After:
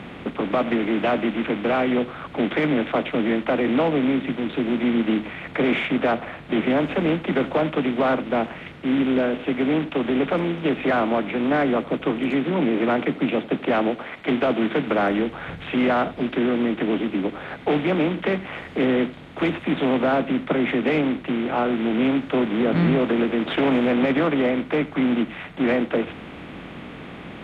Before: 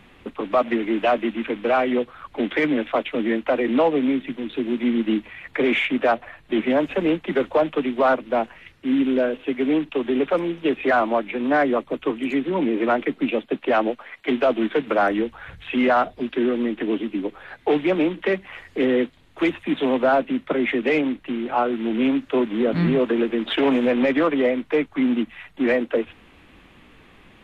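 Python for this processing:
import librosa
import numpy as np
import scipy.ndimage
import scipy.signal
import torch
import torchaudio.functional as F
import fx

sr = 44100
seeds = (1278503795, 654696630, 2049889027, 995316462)

p1 = fx.bin_compress(x, sr, power=0.6)
p2 = scipy.signal.sosfilt(scipy.signal.butter(2, 46.0, 'highpass', fs=sr, output='sos'), p1)
p3 = fx.bass_treble(p2, sr, bass_db=8, treble_db=-1)
p4 = p3 + fx.echo_single(p3, sr, ms=85, db=-18.5, dry=0)
y = p4 * librosa.db_to_amplitude(-6.0)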